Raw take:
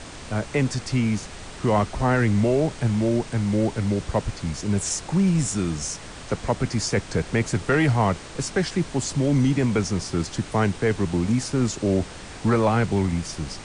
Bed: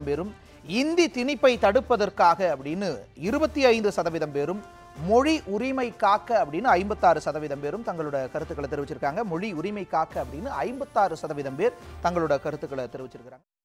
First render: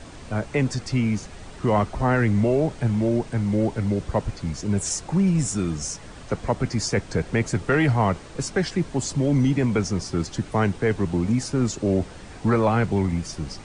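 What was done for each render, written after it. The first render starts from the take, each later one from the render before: denoiser 7 dB, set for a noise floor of -39 dBFS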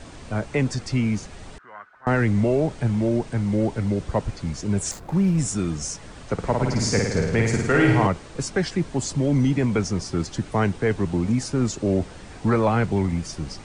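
1.58–2.07 band-pass 1500 Hz, Q 8.5; 4.91–5.38 median filter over 15 samples; 6.33–8.07 flutter echo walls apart 9.2 m, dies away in 1 s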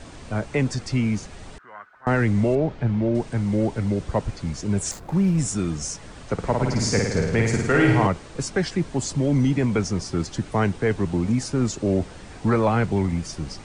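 2.55–3.15 air absorption 190 m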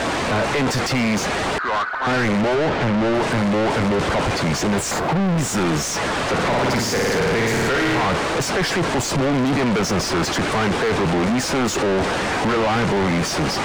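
overdrive pedal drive 40 dB, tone 1600 Hz, clips at -6 dBFS; soft clip -17 dBFS, distortion -13 dB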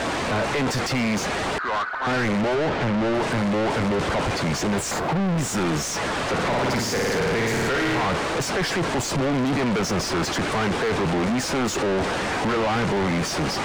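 gain -3.5 dB

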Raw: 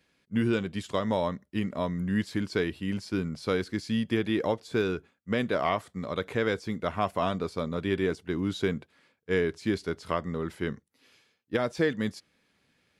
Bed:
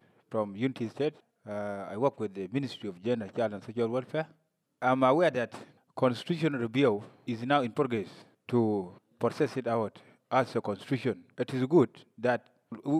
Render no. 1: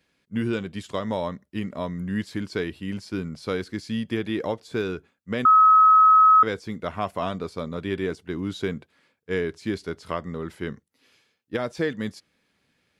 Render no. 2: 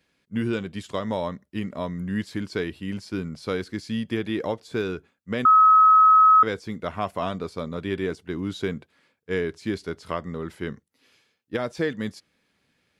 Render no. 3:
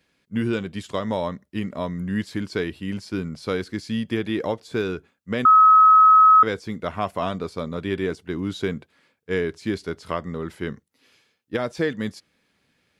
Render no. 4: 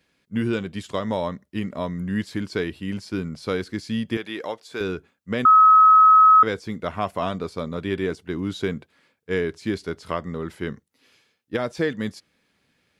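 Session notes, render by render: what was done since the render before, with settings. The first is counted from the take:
5.45–6.43 bleep 1280 Hz -11 dBFS
nothing audible
gain +2 dB
4.17–4.81 HPF 770 Hz 6 dB/oct

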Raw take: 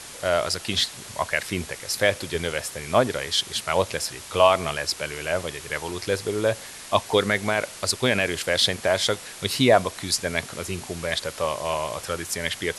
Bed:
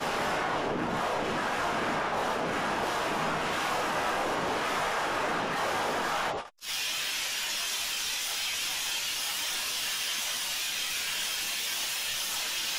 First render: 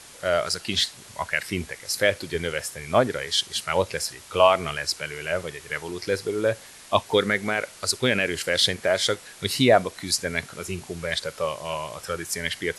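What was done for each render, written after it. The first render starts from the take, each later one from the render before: noise print and reduce 6 dB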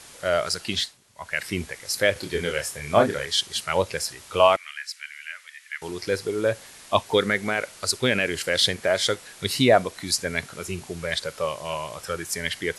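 0.7–1.43 dip -15 dB, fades 0.28 s; 2.13–3.26 doubler 28 ms -4.5 dB; 4.56–5.82 ladder high-pass 1600 Hz, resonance 50%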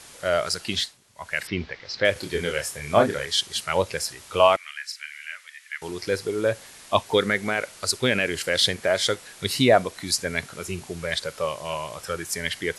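1.47–2.05 steep low-pass 4900 Hz; 4.86–5.35 doubler 39 ms -7.5 dB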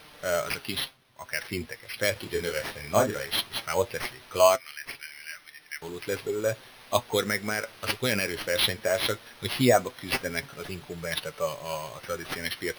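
sample-and-hold 6×; flange 0.18 Hz, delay 6.5 ms, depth 3.2 ms, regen +49%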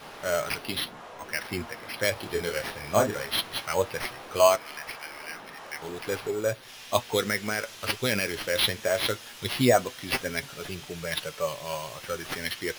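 add bed -14.5 dB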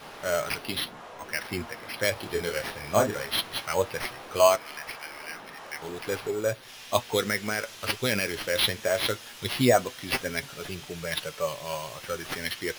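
nothing audible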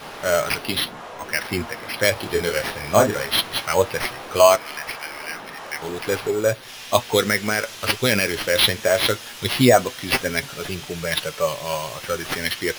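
gain +7.5 dB; limiter -2 dBFS, peak gain reduction 2.5 dB

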